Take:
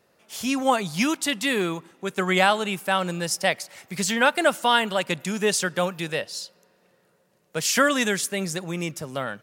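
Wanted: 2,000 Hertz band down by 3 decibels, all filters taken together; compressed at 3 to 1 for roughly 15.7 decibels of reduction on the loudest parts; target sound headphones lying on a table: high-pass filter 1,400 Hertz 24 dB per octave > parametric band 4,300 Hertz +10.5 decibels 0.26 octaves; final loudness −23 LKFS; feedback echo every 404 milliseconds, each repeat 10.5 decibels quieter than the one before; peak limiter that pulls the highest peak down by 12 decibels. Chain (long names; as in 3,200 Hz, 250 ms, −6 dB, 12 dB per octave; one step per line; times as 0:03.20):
parametric band 2,000 Hz −3 dB
downward compressor 3 to 1, threshold −37 dBFS
brickwall limiter −32.5 dBFS
high-pass filter 1,400 Hz 24 dB per octave
parametric band 4,300 Hz +10.5 dB 0.26 octaves
repeating echo 404 ms, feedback 30%, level −10.5 dB
level +20 dB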